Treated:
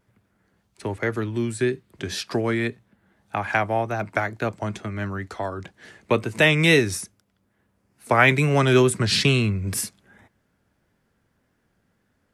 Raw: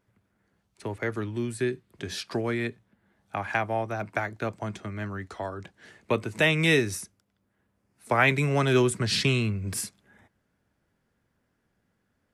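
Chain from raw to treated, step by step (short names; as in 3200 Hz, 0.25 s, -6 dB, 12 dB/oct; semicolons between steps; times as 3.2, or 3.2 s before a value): wow and flutter 50 cents; gain +5 dB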